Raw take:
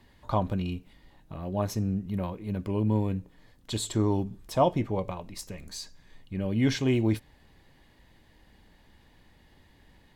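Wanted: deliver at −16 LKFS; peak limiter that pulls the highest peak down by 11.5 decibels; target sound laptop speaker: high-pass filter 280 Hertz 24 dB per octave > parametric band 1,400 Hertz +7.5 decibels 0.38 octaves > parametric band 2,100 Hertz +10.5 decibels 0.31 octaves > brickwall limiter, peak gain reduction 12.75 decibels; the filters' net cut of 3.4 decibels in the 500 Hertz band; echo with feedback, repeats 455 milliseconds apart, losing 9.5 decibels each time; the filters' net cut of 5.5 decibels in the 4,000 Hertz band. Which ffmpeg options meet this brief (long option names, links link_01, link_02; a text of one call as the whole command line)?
ffmpeg -i in.wav -af "equalizer=frequency=500:width_type=o:gain=-4.5,equalizer=frequency=4000:width_type=o:gain=-8,alimiter=level_in=1dB:limit=-24dB:level=0:latency=1,volume=-1dB,highpass=frequency=280:width=0.5412,highpass=frequency=280:width=1.3066,equalizer=frequency=1400:width_type=o:width=0.38:gain=7.5,equalizer=frequency=2100:width_type=o:width=0.31:gain=10.5,aecho=1:1:455|910|1365|1820:0.335|0.111|0.0365|0.012,volume=28dB,alimiter=limit=-5.5dB:level=0:latency=1" out.wav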